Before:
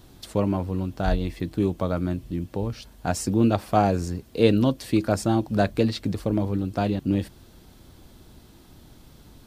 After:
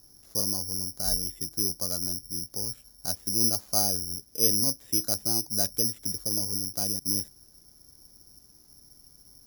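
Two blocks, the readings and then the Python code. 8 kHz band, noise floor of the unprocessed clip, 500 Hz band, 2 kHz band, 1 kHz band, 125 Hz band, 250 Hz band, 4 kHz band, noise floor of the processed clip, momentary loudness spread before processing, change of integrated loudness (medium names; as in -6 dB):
+14.0 dB, -51 dBFS, -14.0 dB, -16.5 dB, -14.5 dB, -14.0 dB, -14.0 dB, +8.0 dB, -57 dBFS, 9 LU, -1.0 dB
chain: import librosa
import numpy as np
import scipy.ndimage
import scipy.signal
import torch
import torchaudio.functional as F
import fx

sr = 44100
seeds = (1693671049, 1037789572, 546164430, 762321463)

y = fx.high_shelf(x, sr, hz=3400.0, db=-9.5)
y = (np.kron(scipy.signal.resample_poly(y, 1, 8), np.eye(8)[0]) * 8)[:len(y)]
y = y * librosa.db_to_amplitude(-14.0)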